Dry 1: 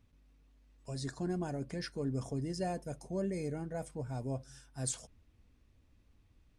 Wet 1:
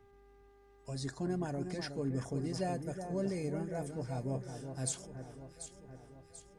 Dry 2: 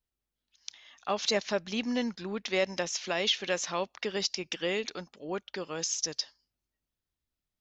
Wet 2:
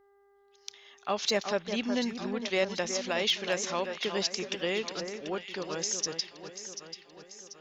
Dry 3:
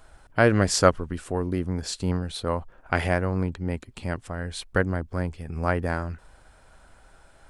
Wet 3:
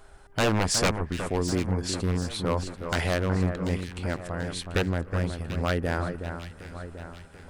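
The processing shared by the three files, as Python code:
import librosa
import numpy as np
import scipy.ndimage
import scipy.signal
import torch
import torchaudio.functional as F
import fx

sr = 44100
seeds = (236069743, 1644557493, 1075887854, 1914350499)

y = 10.0 ** (-16.5 / 20.0) * (np.abs((x / 10.0 ** (-16.5 / 20.0) + 3.0) % 4.0 - 2.0) - 1.0)
y = fx.echo_alternate(y, sr, ms=369, hz=1900.0, feedback_pct=70, wet_db=-7.5)
y = fx.dmg_buzz(y, sr, base_hz=400.0, harmonics=5, level_db=-64.0, tilt_db=-8, odd_only=False)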